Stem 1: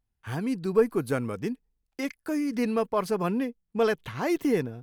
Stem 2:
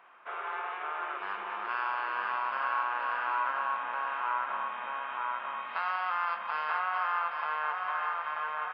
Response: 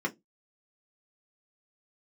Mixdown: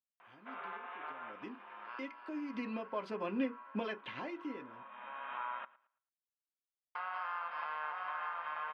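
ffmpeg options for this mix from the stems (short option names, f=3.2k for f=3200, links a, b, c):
-filter_complex "[0:a]highpass=340,acompressor=threshold=-36dB:ratio=4,lowpass=f=2.9k:t=q:w=2.1,afade=t=in:st=1.21:d=0.28:silence=0.223872,afade=t=in:st=2.34:d=0.75:silence=0.334965,afade=t=out:st=3.97:d=0.35:silence=0.354813,asplit=3[a][b][c];[b]volume=-10.5dB[d];[1:a]acompressor=threshold=-34dB:ratio=4,adelay=200,volume=-2dB,asplit=3[e][f][g];[e]atrim=end=5.65,asetpts=PTS-STARTPTS,afade=t=out:st=5.646:d=0.004:c=hsin[h];[f]atrim=start=5.65:end=6.95,asetpts=PTS-STARTPTS,volume=0[i];[g]atrim=start=6.95,asetpts=PTS-STARTPTS,afade=t=in:d=0.004:c=hsin[j];[h][i][j]concat=n=3:v=0:a=1,asplit=3[k][l][m];[l]volume=-22.5dB[n];[m]volume=-21.5dB[o];[c]apad=whole_len=394015[p];[k][p]sidechaincompress=threshold=-58dB:ratio=5:attack=6.1:release=661[q];[2:a]atrim=start_sample=2205[r];[d][n]amix=inputs=2:normalize=0[s];[s][r]afir=irnorm=-1:irlink=0[t];[o]aecho=0:1:111|222|333|444:1|0.26|0.0676|0.0176[u];[a][q][t][u]amix=inputs=4:normalize=0"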